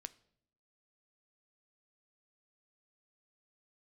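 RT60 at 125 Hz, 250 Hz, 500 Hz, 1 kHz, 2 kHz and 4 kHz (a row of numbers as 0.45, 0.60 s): 0.90, 0.95, 0.80, 0.60, 0.55, 0.55 s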